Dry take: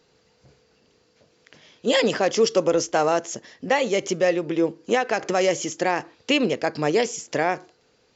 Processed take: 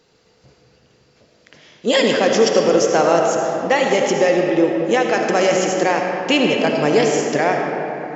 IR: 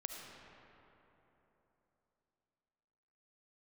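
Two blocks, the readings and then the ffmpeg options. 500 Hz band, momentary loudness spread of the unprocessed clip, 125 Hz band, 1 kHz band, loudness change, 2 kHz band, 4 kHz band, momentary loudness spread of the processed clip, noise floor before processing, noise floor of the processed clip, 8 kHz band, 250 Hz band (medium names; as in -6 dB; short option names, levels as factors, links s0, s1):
+6.5 dB, 6 LU, +6.5 dB, +6.5 dB, +6.0 dB, +6.0 dB, +5.5 dB, 4 LU, -63 dBFS, -57 dBFS, no reading, +6.5 dB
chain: -filter_complex "[1:a]atrim=start_sample=2205[s0];[0:a][s0]afir=irnorm=-1:irlink=0,volume=2.37"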